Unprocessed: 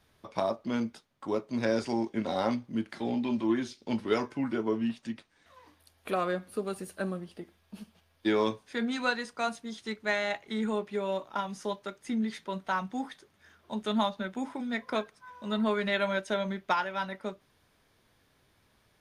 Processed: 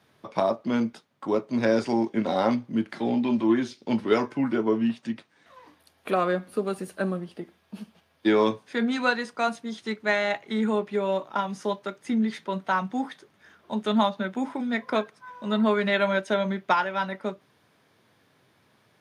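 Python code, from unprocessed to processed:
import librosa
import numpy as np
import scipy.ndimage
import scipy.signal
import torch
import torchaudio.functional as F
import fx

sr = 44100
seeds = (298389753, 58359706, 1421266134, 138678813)

y = scipy.signal.sosfilt(scipy.signal.butter(4, 110.0, 'highpass', fs=sr, output='sos'), x)
y = fx.high_shelf(y, sr, hz=4100.0, db=-6.5)
y = y * 10.0 ** (6.0 / 20.0)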